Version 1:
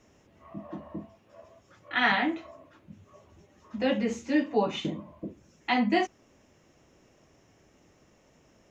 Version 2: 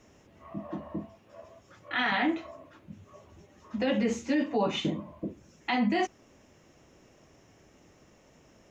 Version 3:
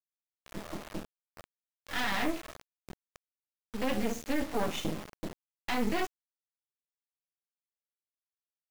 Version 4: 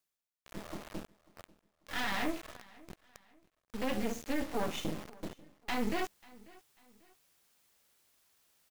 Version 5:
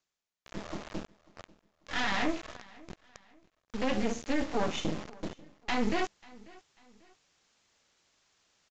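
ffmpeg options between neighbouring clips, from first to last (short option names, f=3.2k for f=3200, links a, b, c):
-af "alimiter=limit=-21.5dB:level=0:latency=1:release=17,volume=2.5dB"
-af "acrusher=bits=4:dc=4:mix=0:aa=0.000001"
-af "areverse,acompressor=mode=upward:threshold=-44dB:ratio=2.5,areverse,aecho=1:1:542|1084:0.0708|0.0262,volume=-3dB"
-af "aresample=16000,aresample=44100,volume=4dB"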